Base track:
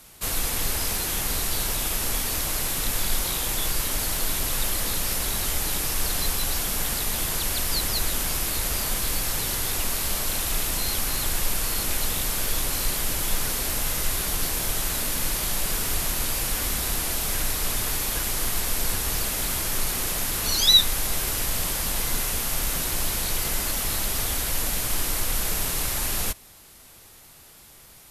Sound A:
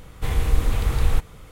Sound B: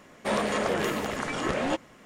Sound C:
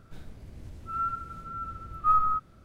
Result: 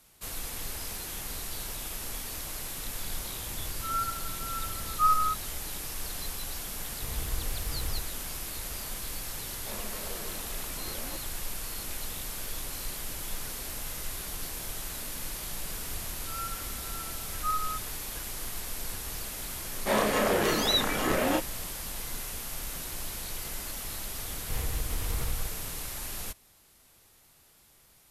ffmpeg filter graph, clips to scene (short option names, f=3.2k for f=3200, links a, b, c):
-filter_complex "[3:a]asplit=2[a][b];[1:a]asplit=2[c][d];[2:a]asplit=2[e][f];[0:a]volume=-11dB[g];[b]equalizer=f=1.5k:t=o:w=0.77:g=-2.5[h];[f]asplit=2[i][j];[j]adelay=32,volume=-2.5dB[k];[i][k]amix=inputs=2:normalize=0[l];[d]acompressor=threshold=-25dB:ratio=6:attack=3.2:release=140:knee=1:detection=peak[m];[a]atrim=end=2.64,asetpts=PTS-STARTPTS,volume=-1dB,afade=t=in:d=0.004:c=hsin,afade=t=out:st=2.636:d=0.004:c=hsin,adelay=2950[n];[c]atrim=end=1.51,asetpts=PTS-STARTPTS,volume=-14.5dB,afade=t=in:d=0.004:c=hsin,afade=t=out:st=1.506:d=0.004:c=hsin,adelay=6800[o];[e]atrim=end=2.05,asetpts=PTS-STARTPTS,volume=-17dB,afade=t=in:d=0.004:c=hsin,afade=t=out:st=2.046:d=0.004:c=hsin,adelay=9410[p];[h]atrim=end=2.64,asetpts=PTS-STARTPTS,volume=-6.5dB,afade=t=in:d=0.004:c=hsin,afade=t=out:st=2.636:d=0.004:c=hsin,adelay=15390[q];[l]atrim=end=2.05,asetpts=PTS-STARTPTS,volume=-1dB,afade=t=in:d=0.004:c=hsin,afade=t=out:st=2.046:d=0.004:c=hsin,adelay=19610[r];[m]atrim=end=1.51,asetpts=PTS-STARTPTS,volume=-3.5dB,afade=t=in:d=0.004:c=hsin,afade=t=out:st=1.506:d=0.004:c=hsin,adelay=24280[s];[g][n][o][p][q][r][s]amix=inputs=7:normalize=0"